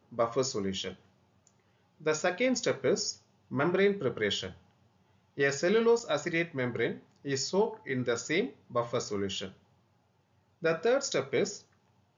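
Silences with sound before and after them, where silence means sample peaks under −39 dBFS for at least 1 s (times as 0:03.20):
0:00.93–0:02.06
0:09.49–0:10.63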